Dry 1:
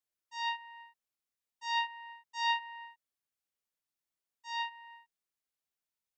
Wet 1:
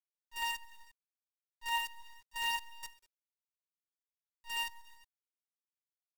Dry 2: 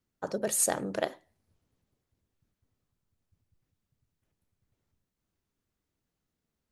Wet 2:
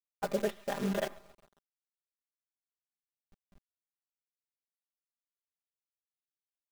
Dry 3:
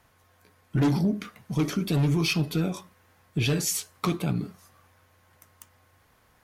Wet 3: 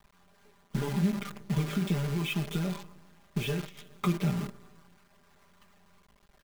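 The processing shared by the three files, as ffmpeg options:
-filter_complex "[0:a]asplit=2[s0][s1];[s1]aecho=0:1:135|270|405|540:0.0708|0.0418|0.0246|0.0145[s2];[s0][s2]amix=inputs=2:normalize=0,acompressor=threshold=0.0355:ratio=12,afftdn=nr=22:nf=-61,aresample=8000,aresample=44100,flanger=delay=0.9:depth=5.9:regen=67:speed=0.33:shape=sinusoidal,lowshelf=f=120:g=5.5,acrusher=bits=8:dc=4:mix=0:aa=0.000001,aecho=1:1:5:0.85,volume=1.41"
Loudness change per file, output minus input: -1.5 LU, -5.0 LU, -5.0 LU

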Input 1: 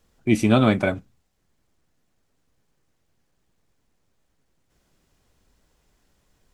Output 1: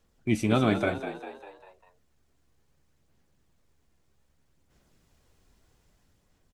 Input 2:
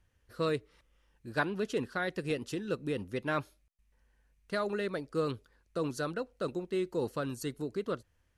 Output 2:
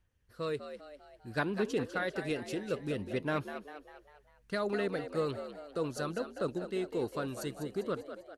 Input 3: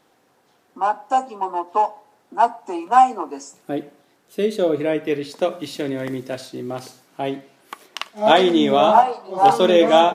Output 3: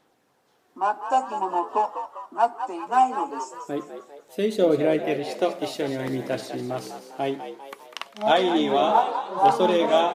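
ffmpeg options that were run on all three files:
-filter_complex "[0:a]dynaudnorm=f=220:g=7:m=1.78,aphaser=in_gain=1:out_gain=1:delay=2.9:decay=0.26:speed=0.63:type=sinusoidal,asplit=2[s0][s1];[s1]asplit=5[s2][s3][s4][s5][s6];[s2]adelay=199,afreqshift=70,volume=0.316[s7];[s3]adelay=398,afreqshift=140,volume=0.158[s8];[s4]adelay=597,afreqshift=210,volume=0.0794[s9];[s5]adelay=796,afreqshift=280,volume=0.0394[s10];[s6]adelay=995,afreqshift=350,volume=0.0197[s11];[s7][s8][s9][s10][s11]amix=inputs=5:normalize=0[s12];[s0][s12]amix=inputs=2:normalize=0,volume=0.473"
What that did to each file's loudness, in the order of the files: -7.0 LU, -1.0 LU, -5.0 LU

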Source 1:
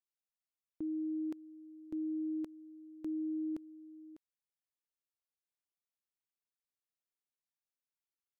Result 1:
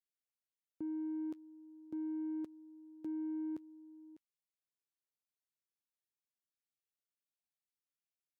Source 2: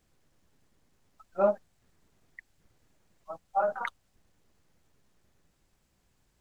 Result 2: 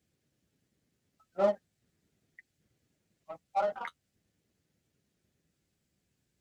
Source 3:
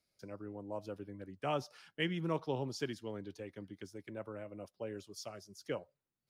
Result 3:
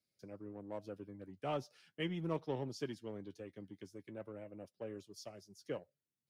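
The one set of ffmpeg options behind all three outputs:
-filter_complex "[0:a]highpass=94,acrossover=split=1200[s0][s1];[s0]adynamicsmooth=sensitivity=5.5:basefreq=610[s2];[s1]flanger=delay=5.4:depth=7:regen=34:speed=0.4:shape=triangular[s3];[s2][s3]amix=inputs=2:normalize=0,volume=0.794"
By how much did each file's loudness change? -2.5 LU, -2.5 LU, -3.0 LU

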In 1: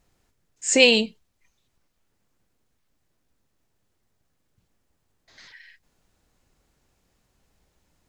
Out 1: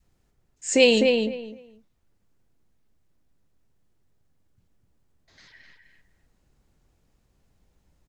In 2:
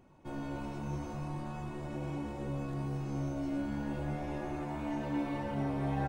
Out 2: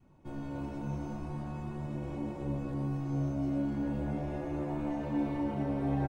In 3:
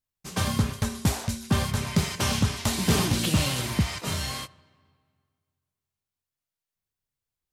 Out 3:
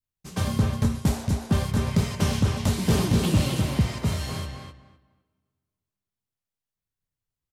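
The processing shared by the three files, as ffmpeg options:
-filter_complex "[0:a]lowshelf=f=330:g=7.5,asplit=2[s0][s1];[s1]adelay=254,lowpass=f=2400:p=1,volume=0.668,asplit=2[s2][s3];[s3]adelay=254,lowpass=f=2400:p=1,volume=0.21,asplit=2[s4][s5];[s5]adelay=254,lowpass=f=2400:p=1,volume=0.21[s6];[s0][s2][s4][s6]amix=inputs=4:normalize=0,adynamicequalizer=threshold=0.0141:dfrequency=510:dqfactor=1.2:tfrequency=510:tqfactor=1.2:attack=5:release=100:ratio=0.375:range=2:mode=boostabove:tftype=bell,volume=0.562"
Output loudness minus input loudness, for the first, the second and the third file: -2.5 LU, +2.0 LU, +1.5 LU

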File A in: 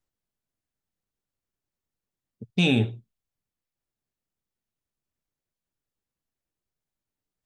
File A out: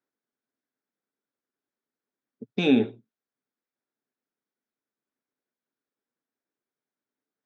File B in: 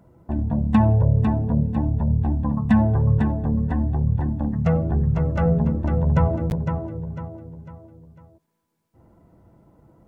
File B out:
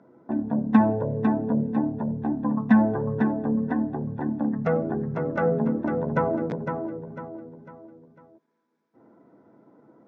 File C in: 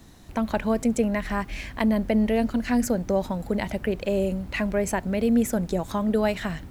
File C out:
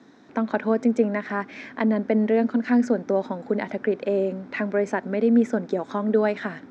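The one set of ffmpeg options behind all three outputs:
-af "highpass=f=170:w=0.5412,highpass=f=170:w=1.3066,equalizer=f=170:t=q:w=4:g=-7,equalizer=f=260:t=q:w=4:g=6,equalizer=f=430:t=q:w=4:g=5,equalizer=f=1500:t=q:w=4:g=5,equalizer=f=2900:t=q:w=4:g=-9,equalizer=f=4400:t=q:w=4:g=-7,lowpass=f=5000:w=0.5412,lowpass=f=5000:w=1.3066"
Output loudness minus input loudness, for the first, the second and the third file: +0.5 LU, -3.5 LU, +1.5 LU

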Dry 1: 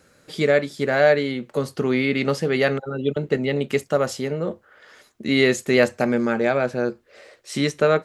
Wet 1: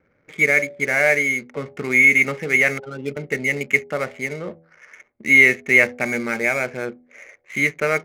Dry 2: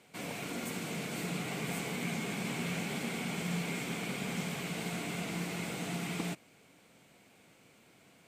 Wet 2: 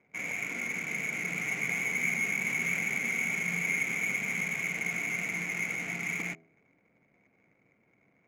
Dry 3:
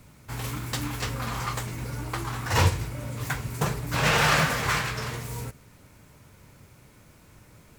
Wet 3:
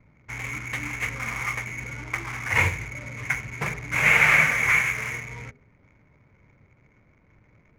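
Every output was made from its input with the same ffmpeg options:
-af "lowpass=f=2200:t=q:w=12,adynamicsmooth=sensitivity=7:basefreq=640,bandreject=f=82.07:t=h:w=4,bandreject=f=164.14:t=h:w=4,bandreject=f=246.21:t=h:w=4,bandreject=f=328.28:t=h:w=4,bandreject=f=410.35:t=h:w=4,bandreject=f=492.42:t=h:w=4,bandreject=f=574.49:t=h:w=4,bandreject=f=656.56:t=h:w=4,bandreject=f=738.63:t=h:w=4,bandreject=f=820.7:t=h:w=4,volume=0.562"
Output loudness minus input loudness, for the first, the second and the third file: +4.5 LU, +6.5 LU, +4.5 LU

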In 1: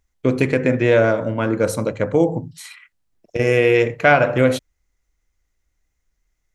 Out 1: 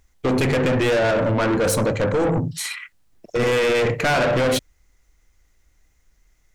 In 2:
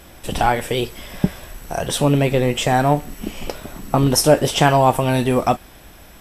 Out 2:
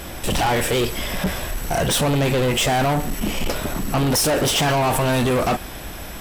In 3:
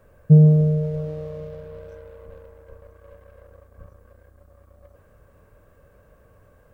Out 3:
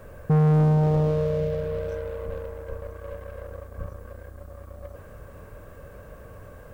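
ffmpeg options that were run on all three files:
-af "apsyclip=8.91,asoftclip=type=tanh:threshold=0.398,volume=0.376"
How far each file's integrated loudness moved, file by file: -2.5 LU, -2.0 LU, -6.5 LU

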